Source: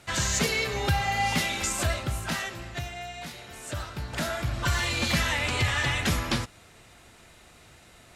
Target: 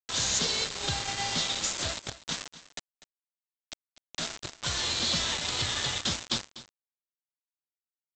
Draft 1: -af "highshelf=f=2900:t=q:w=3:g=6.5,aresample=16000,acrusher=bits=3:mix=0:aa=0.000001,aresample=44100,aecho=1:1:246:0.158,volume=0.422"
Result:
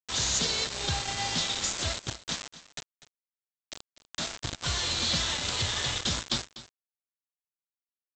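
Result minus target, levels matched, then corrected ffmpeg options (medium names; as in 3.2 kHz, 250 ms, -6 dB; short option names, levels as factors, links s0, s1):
125 Hz band +3.0 dB
-af "highpass=f=99:p=1,highshelf=f=2900:t=q:w=3:g=6.5,aresample=16000,acrusher=bits=3:mix=0:aa=0.000001,aresample=44100,aecho=1:1:246:0.158,volume=0.422"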